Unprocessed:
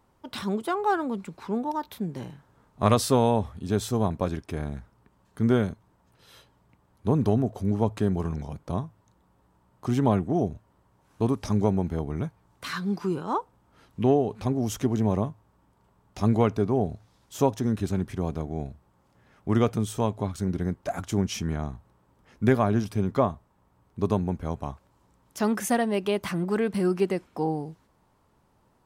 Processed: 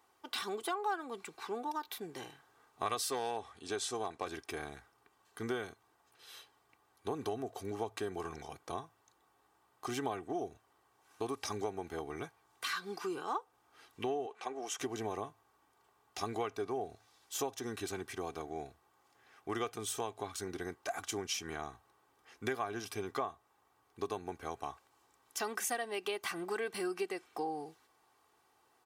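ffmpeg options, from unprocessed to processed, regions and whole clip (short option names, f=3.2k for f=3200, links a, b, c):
-filter_complex "[0:a]asettb=1/sr,asplit=3[a][b][c];[a]atrim=end=3.104[d];[b]atrim=start=3.1:end=4.26,asetpts=PTS-STARTPTS,afade=t=in:d=0.004:c=qsin,afade=t=out:st=1.156:d=0.004:c=qsin,lowpass=f=10k:w=0.5412,lowpass=f=10k:w=1.3066,lowshelf=f=150:g=-7,asoftclip=type=hard:threshold=-13.5dB[e];[c]atrim=start=4.256[f];[d][e]acrossfade=d=0.004:c1=hsin:c2=qsin[g];[g][f]acrossfade=d=0.004:c1=qsin:c2=hsin,asettb=1/sr,asplit=3[h][i][j];[h]atrim=end=14.264[k];[i]atrim=start=14.26:end=14.79,asetpts=PTS-STARTPTS,afade=t=in:d=0.004:c=qsin,afade=t=out:st=0.526:d=0.004:c=qsin,highpass=460,lowpass=6.6k,equalizer=f=4.5k:t=o:w=0.56:g=-9.5[l];[j]atrim=start=14.786[m];[k][l]acrossfade=d=0.004:c1=hsin:c2=qsin[n];[n][m]acrossfade=d=0.004:c1=qsin:c2=hsin,highpass=f=1.2k:p=1,aecho=1:1:2.6:0.59,acompressor=threshold=-36dB:ratio=3,volume=1dB"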